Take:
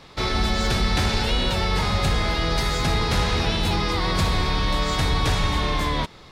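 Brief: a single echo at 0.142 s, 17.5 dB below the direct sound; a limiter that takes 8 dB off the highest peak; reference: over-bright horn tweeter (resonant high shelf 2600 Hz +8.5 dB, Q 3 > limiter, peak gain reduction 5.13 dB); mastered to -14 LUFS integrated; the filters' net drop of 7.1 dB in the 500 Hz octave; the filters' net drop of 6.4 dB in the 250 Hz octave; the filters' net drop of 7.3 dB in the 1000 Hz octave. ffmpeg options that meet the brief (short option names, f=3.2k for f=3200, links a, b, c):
-af "equalizer=f=250:t=o:g=-8.5,equalizer=f=500:t=o:g=-4.5,equalizer=f=1k:t=o:g=-5.5,alimiter=limit=-20dB:level=0:latency=1,highshelf=f=2.6k:t=q:w=3:g=8.5,aecho=1:1:142:0.133,volume=7.5dB,alimiter=limit=-6dB:level=0:latency=1"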